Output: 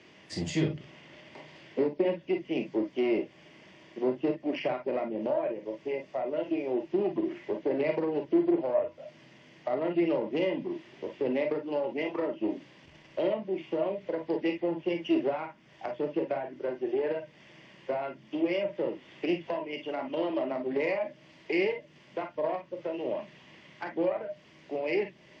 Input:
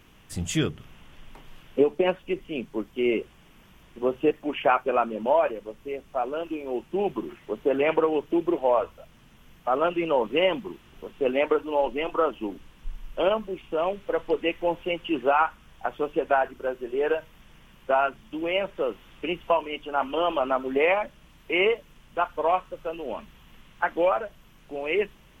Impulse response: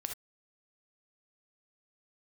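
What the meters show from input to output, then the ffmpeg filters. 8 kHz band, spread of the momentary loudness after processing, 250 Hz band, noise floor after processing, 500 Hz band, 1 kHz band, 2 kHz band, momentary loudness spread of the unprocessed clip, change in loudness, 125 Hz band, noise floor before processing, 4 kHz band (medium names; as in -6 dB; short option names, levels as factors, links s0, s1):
no reading, 12 LU, 0.0 dB, -57 dBFS, -5.0 dB, -12.5 dB, -8.5 dB, 13 LU, -5.0 dB, -2.0 dB, -55 dBFS, -8.5 dB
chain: -filter_complex "[0:a]acrossover=split=300[s0][s1];[s1]acompressor=threshold=0.0158:ratio=6[s2];[s0][s2]amix=inputs=2:normalize=0,aeval=exprs='0.168*(cos(1*acos(clip(val(0)/0.168,-1,1)))-cos(1*PI/2))+0.0211*(cos(4*acos(clip(val(0)/0.168,-1,1)))-cos(4*PI/2))+0.00106*(cos(5*acos(clip(val(0)/0.168,-1,1)))-cos(5*PI/2))+0.00237*(cos(8*acos(clip(val(0)/0.168,-1,1)))-cos(8*PI/2))':c=same,asplit=2[s3][s4];[s4]aeval=exprs='0.0596*(abs(mod(val(0)/0.0596+3,4)-2)-1)':c=same,volume=0.355[s5];[s3][s5]amix=inputs=2:normalize=0,highpass=f=110:w=0.5412,highpass=f=110:w=1.3066,equalizer=f=130:t=q:w=4:g=-4,equalizer=f=350:t=q:w=4:g=8,equalizer=f=600:t=q:w=4:g=9,equalizer=f=1300:t=q:w=4:g=-7,equalizer=f=2000:t=q:w=4:g=9,equalizer=f=4700:t=q:w=4:g=9,lowpass=f=6400:w=0.5412,lowpass=f=6400:w=1.3066[s6];[1:a]atrim=start_sample=2205,asetrate=61740,aresample=44100[s7];[s6][s7]afir=irnorm=-1:irlink=0" -ar 44100 -c:a wmav2 -b:a 128k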